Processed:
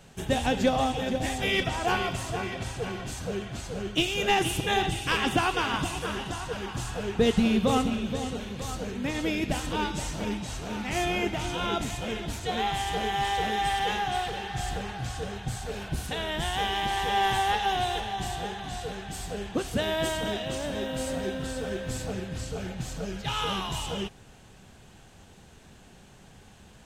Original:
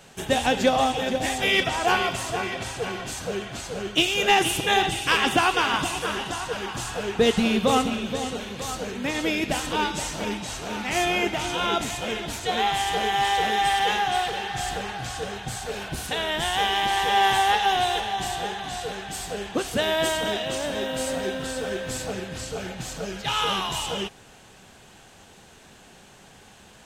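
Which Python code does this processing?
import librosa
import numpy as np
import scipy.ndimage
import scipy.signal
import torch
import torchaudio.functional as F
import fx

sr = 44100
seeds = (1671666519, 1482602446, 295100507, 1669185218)

y = fx.low_shelf(x, sr, hz=220.0, db=11.5)
y = y * librosa.db_to_amplitude(-6.0)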